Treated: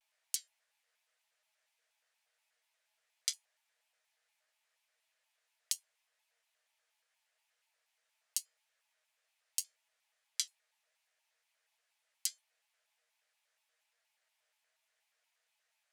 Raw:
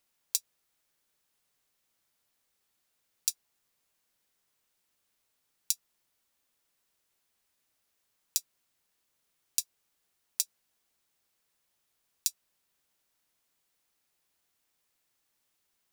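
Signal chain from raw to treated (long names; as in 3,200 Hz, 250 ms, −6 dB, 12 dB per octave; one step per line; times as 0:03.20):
low-pass filter 11,000 Hz 12 dB per octave
flanger 0.79 Hz, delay 6.7 ms, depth 6.9 ms, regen +52%
Chebyshev high-pass with heavy ripple 540 Hz, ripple 9 dB
tuned comb filter 730 Hz, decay 0.2 s, harmonics all, mix 50%
pitch modulation by a square or saw wave square 4.2 Hz, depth 250 cents
level +14 dB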